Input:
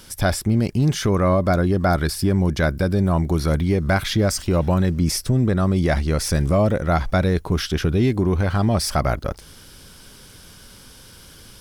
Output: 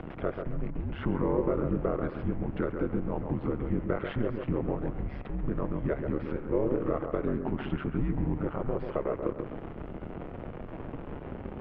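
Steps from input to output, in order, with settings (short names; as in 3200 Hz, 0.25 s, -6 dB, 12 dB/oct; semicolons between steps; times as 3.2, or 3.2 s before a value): in parallel at -9.5 dB: Schmitt trigger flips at -38.5 dBFS; on the sum: compressor, threshold -21 dBFS, peak gain reduction 8.5 dB; mistuned SSB -140 Hz 370–3000 Hz; flange 0.2 Hz, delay 1.4 ms, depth 1.5 ms, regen +80%; crackle 220/s -55 dBFS; ring modulator 69 Hz; upward compressor, threshold -44 dBFS; tilt -4.5 dB/oct; dark delay 0.136 s, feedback 34%, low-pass 1900 Hz, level -6 dB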